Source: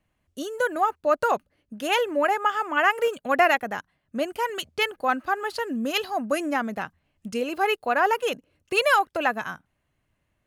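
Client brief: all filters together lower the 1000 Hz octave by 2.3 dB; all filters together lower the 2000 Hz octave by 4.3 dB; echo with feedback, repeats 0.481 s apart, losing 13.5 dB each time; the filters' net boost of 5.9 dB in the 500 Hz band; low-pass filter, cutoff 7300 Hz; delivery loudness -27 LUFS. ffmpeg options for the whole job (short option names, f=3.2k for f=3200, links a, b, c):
-af "lowpass=7.3k,equalizer=f=500:t=o:g=9,equalizer=f=1k:t=o:g=-6.5,equalizer=f=2k:t=o:g=-4,aecho=1:1:481|962:0.211|0.0444,volume=-4dB"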